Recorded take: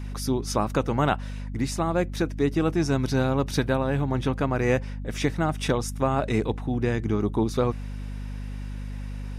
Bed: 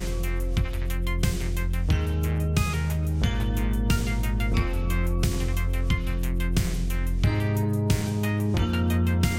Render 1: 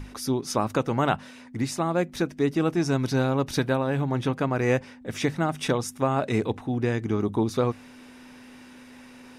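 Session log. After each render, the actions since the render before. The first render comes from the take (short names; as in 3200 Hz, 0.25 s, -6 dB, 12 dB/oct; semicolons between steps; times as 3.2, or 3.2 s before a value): notches 50/100/150/200 Hz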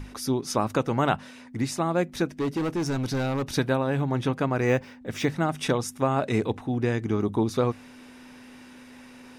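2.35–3.48 hard clip -23 dBFS; 4.66–5.32 decimation joined by straight lines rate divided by 2×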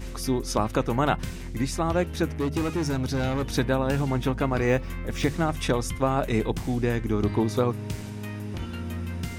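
add bed -9.5 dB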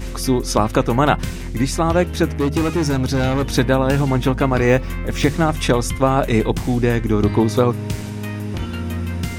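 gain +8 dB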